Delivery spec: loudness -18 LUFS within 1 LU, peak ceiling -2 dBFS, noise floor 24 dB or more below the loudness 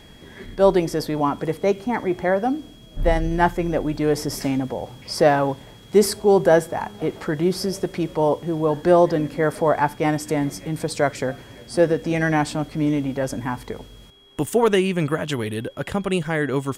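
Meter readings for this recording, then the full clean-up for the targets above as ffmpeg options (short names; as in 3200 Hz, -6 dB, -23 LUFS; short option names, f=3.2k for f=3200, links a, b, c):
steady tone 3300 Hz; tone level -51 dBFS; loudness -22.0 LUFS; peak -3.5 dBFS; loudness target -18.0 LUFS
-> -af "bandreject=f=3.3k:w=30"
-af "volume=4dB,alimiter=limit=-2dB:level=0:latency=1"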